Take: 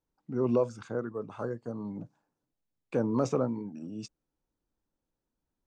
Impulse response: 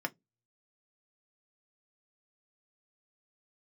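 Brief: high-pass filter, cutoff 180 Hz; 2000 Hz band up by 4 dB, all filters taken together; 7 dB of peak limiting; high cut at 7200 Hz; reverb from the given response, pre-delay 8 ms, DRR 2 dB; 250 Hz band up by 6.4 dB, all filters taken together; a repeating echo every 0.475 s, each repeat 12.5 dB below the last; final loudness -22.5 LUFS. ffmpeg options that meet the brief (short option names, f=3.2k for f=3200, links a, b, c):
-filter_complex "[0:a]highpass=180,lowpass=7.2k,equalizer=f=250:t=o:g=8.5,equalizer=f=2k:t=o:g=6,alimiter=limit=-19dB:level=0:latency=1,aecho=1:1:475|950|1425:0.237|0.0569|0.0137,asplit=2[a][b];[1:a]atrim=start_sample=2205,adelay=8[c];[b][c]afir=irnorm=-1:irlink=0,volume=-6dB[d];[a][d]amix=inputs=2:normalize=0,volume=8dB"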